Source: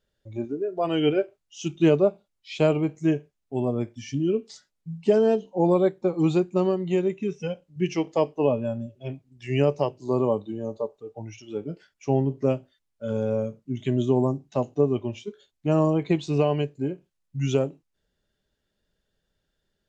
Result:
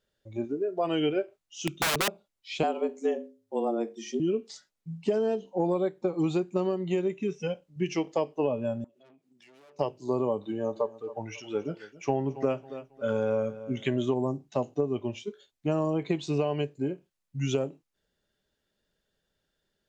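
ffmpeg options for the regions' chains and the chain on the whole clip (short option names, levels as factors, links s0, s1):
-filter_complex "[0:a]asettb=1/sr,asplit=3[s0][s1][s2];[s0]atrim=end=1.674[s3];[s1]atrim=start=1.67:end=2.08,asetpts=PTS-STARTPTS,afade=t=in:d=0.004:c=qsin,afade=t=out:st=0.406:d=0.004:c=qsin,asuperstop=centerf=800:order=4:qfactor=3,aeval=exprs='(mod(8.91*val(0)+1,2)-1)/8.91':c=same[s4];[s2]atrim=start=2.076[s5];[s3][s4]acrossfade=d=0.004:c1=hsin:c2=qsin[s6];[s6][s5]acrossfade=d=0.004:c1=qsin:c2=hsin,asettb=1/sr,asplit=3[s7][s8][s9];[s7]atrim=end=2.634[s10];[s8]atrim=start=2.63:end=4.2,asetpts=PTS-STARTPTS,afade=t=in:d=0.004:c=qsin,afade=t=out:st=1.566:d=0.004:c=qsin,bandreject=f=50:t=h:w=6,bandreject=f=100:t=h:w=6,bandreject=f=150:t=h:w=6,bandreject=f=200:t=h:w=6,bandreject=f=250:t=h:w=6,bandreject=f=300:t=h:w=6,bandreject=f=350:t=h:w=6,bandreject=f=400:t=h:w=6,bandreject=f=450:t=h:w=6,afreqshift=110,equalizer=f=2500:t=o:w=0.38:g=-4.5[s11];[s9]atrim=start=4.196[s12];[s10][s11]acrossfade=d=0.004:c1=hsin:c2=qsin[s13];[s13][s12]acrossfade=d=0.004:c1=qsin:c2=hsin,asettb=1/sr,asplit=3[s14][s15][s16];[s14]atrim=end=8.844[s17];[s15]atrim=start=8.84:end=9.79,asetpts=PTS-STARTPTS,afade=t=in:d=0.004:c=qsin,afade=t=out:st=0.946:d=0.004:c=qsin,aeval=exprs='(tanh(70.8*val(0)+0.4)-tanh(0.4))/70.8':c=same,highpass=f=200:w=0.5412,highpass=f=200:w=1.3066,acompressor=threshold=0.00126:ratio=3:attack=3.2:release=140:knee=1:detection=peak[s18];[s16]atrim=start=9.786[s19];[s17][s18]acrossfade=d=0.004:c1=hsin:c2=qsin[s20];[s20][s19]acrossfade=d=0.004:c1=qsin:c2=hsin,asettb=1/sr,asplit=3[s21][s22][s23];[s21]atrim=end=10.424[s24];[s22]atrim=start=10.42:end=14.14,asetpts=PTS-STARTPTS,afade=t=in:d=0.004:c=qsin,afade=t=out:st=3.716:d=0.004:c=qsin,equalizer=f=1400:w=0.58:g=9.5,aecho=1:1:273|546|819:0.112|0.0359|0.0115,atrim=end_sample=164052[s25];[s23]atrim=start=14.136[s26];[s24][s25]acrossfade=d=0.004:c1=hsin:c2=qsin[s27];[s27][s26]acrossfade=d=0.004:c1=qsin:c2=hsin,lowshelf=f=140:g=-7.5,acompressor=threshold=0.0708:ratio=6"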